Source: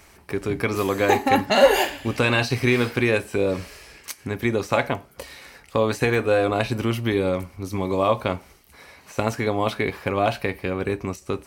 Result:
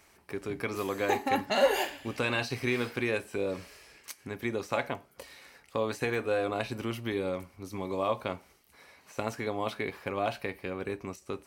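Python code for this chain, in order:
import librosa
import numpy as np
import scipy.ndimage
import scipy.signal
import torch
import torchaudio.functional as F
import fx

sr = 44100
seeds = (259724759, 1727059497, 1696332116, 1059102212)

y = fx.low_shelf(x, sr, hz=110.0, db=-9.0)
y = y * 10.0 ** (-9.0 / 20.0)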